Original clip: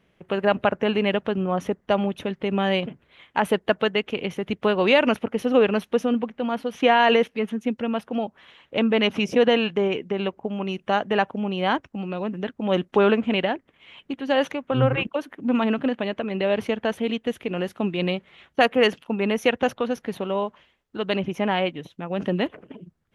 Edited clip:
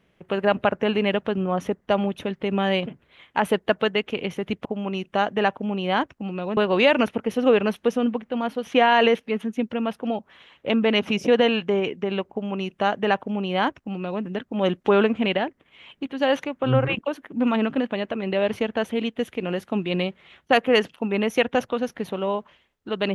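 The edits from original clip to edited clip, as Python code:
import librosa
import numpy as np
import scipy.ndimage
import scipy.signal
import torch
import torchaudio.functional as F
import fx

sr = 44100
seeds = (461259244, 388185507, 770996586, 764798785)

y = fx.edit(x, sr, fx.duplicate(start_s=10.39, length_s=1.92, to_s=4.65), tone=tone)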